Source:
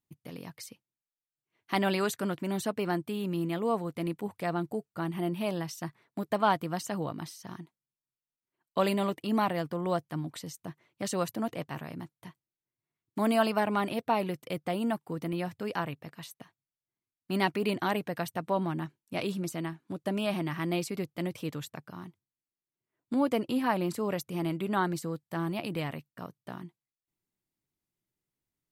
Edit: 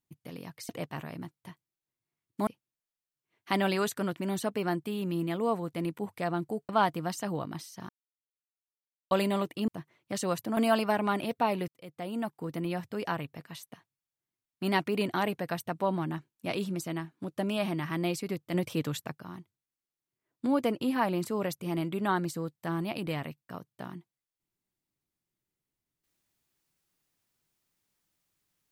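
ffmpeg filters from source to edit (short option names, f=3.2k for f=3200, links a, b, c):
-filter_complex "[0:a]asplit=11[a][b][c][d][e][f][g][h][i][j][k];[a]atrim=end=0.692[l];[b]atrim=start=11.468:end=13.252[m];[c]atrim=start=0.688:end=4.912[n];[d]atrim=start=6.358:end=7.56,asetpts=PTS-STARTPTS,afade=t=out:st=1.198:d=0.004:c=hsin[o];[e]atrim=start=7.56:end=8.78,asetpts=PTS-STARTPTS,volume=0[p];[f]atrim=start=8.78:end=9.352,asetpts=PTS-STARTPTS,afade=t=in:d=0.004:c=hsin[q];[g]atrim=start=10.578:end=11.472[r];[h]atrim=start=13.248:end=14.36,asetpts=PTS-STARTPTS,afade=t=out:st=1.108:d=0.004:c=hsin[s];[i]atrim=start=14.36:end=21.222,asetpts=PTS-STARTPTS,afade=t=in:d=1.11:c=qsin[t];[j]atrim=start=21.218:end=21.832,asetpts=PTS-STARTPTS,volume=4.5dB[u];[k]atrim=start=21.828[v];[l][m]acrossfade=d=0.004:c1=hsin:c2=hsin[w];[w][n]acrossfade=d=0.004:c1=hsin:c2=hsin[x];[o][p][q]concat=n=3:v=0:a=1[y];[x][y]acrossfade=d=0.004:c1=hsin:c2=hsin[z];[z][r]acrossfade=d=0.004:c1=hsin:c2=hsin[aa];[s][t]concat=n=2:v=0:a=1[ab];[aa][ab]acrossfade=d=0.004:c1=hsin:c2=hsin[ac];[ac][u]acrossfade=d=0.004:c1=hsin:c2=hsin[ad];[ad][v]acrossfade=d=0.004:c1=hsin:c2=hsin"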